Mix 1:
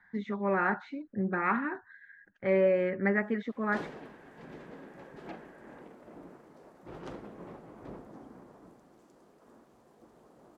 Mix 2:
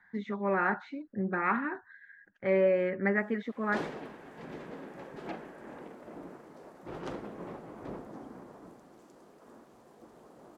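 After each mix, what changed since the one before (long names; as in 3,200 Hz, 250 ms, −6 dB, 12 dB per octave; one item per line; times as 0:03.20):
background +4.5 dB
master: add low-shelf EQ 130 Hz −4.5 dB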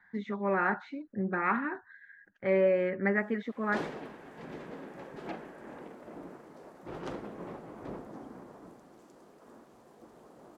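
nothing changed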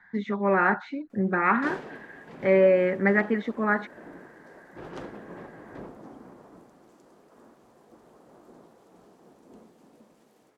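speech +6.5 dB
background: entry −2.10 s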